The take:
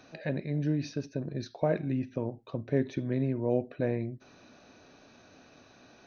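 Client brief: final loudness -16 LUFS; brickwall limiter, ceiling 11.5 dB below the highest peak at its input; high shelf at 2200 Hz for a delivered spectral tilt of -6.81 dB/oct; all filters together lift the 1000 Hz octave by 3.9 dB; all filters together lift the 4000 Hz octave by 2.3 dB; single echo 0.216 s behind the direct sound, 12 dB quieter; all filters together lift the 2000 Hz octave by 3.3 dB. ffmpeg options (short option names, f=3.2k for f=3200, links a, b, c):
-af "equalizer=f=1k:t=o:g=6,equalizer=f=2k:t=o:g=4,highshelf=f=2.2k:g=-7,equalizer=f=4k:t=o:g=7.5,alimiter=level_in=1dB:limit=-24dB:level=0:latency=1,volume=-1dB,aecho=1:1:216:0.251,volume=20.5dB"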